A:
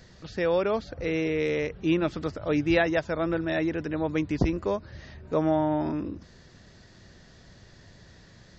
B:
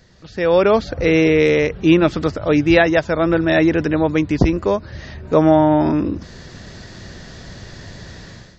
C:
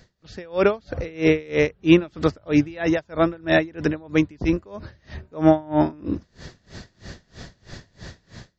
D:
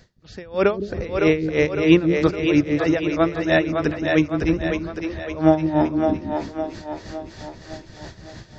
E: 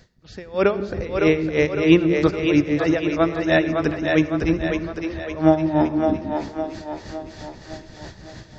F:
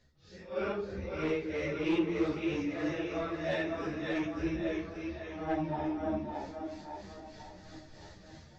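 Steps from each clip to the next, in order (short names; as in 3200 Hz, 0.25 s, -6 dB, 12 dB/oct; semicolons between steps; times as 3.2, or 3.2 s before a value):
AGC gain up to 16 dB
dB-linear tremolo 3.1 Hz, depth 28 dB
split-band echo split 340 Hz, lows 0.164 s, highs 0.559 s, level -4 dB
reverb RT60 1.0 s, pre-delay 68 ms, DRR 15.5 dB
phase scrambler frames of 0.2 s; soft clip -12.5 dBFS, distortion -14 dB; ensemble effect; gain -9 dB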